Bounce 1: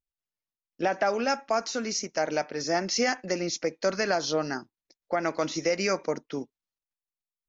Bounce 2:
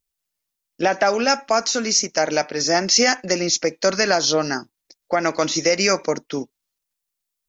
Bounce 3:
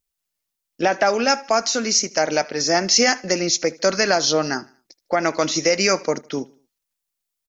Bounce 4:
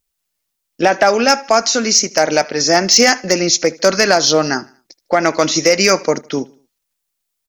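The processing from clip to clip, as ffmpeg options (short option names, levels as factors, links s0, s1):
-af "highshelf=f=3800:g=8.5,volume=2.24"
-af "aecho=1:1:77|154|231:0.0708|0.0283|0.0113"
-af "asoftclip=type=hard:threshold=0.376,volume=2"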